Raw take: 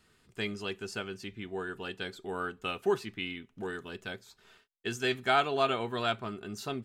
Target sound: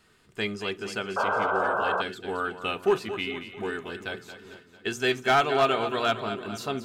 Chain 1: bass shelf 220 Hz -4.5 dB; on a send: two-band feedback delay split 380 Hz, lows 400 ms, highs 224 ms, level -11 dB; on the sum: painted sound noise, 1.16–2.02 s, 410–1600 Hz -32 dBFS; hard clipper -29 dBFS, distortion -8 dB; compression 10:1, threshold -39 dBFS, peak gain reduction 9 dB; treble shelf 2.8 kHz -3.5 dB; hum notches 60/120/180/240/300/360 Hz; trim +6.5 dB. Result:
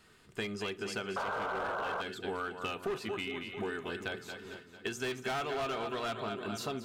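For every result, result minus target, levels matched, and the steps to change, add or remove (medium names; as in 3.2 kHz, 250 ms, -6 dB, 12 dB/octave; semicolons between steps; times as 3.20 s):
compression: peak gain reduction +9 dB; hard clipper: distortion +10 dB
remove: compression 10:1, threshold -39 dBFS, peak gain reduction 9 dB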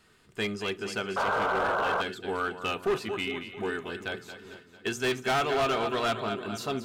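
hard clipper: distortion +10 dB
change: hard clipper -21 dBFS, distortion -18 dB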